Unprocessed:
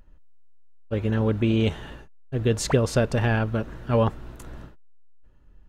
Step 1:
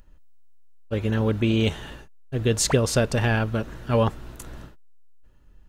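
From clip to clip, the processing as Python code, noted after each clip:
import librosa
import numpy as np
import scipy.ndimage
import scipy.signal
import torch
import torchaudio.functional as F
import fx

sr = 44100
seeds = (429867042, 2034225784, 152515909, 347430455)

y = fx.high_shelf(x, sr, hz=3200.0, db=8.5)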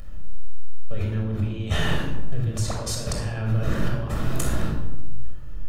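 y = fx.over_compress(x, sr, threshold_db=-34.0, ratio=-1.0)
y = fx.room_shoebox(y, sr, seeds[0], volume_m3=3600.0, walls='furnished', distance_m=6.2)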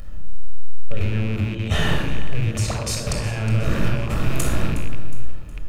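y = fx.rattle_buzz(x, sr, strikes_db=-31.0, level_db=-27.0)
y = fx.echo_feedback(y, sr, ms=364, feedback_pct=43, wet_db=-15.0)
y = F.gain(torch.from_numpy(y), 3.0).numpy()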